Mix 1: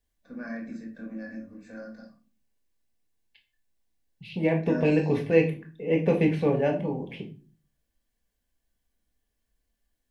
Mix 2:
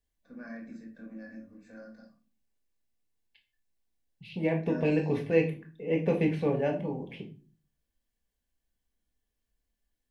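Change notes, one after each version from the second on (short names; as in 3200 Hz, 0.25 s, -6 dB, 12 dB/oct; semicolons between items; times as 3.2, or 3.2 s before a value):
first voice -6.5 dB; second voice -4.0 dB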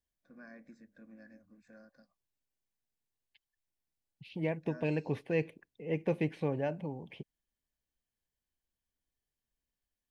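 reverb: off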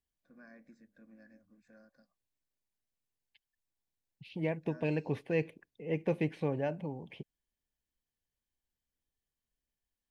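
first voice -3.5 dB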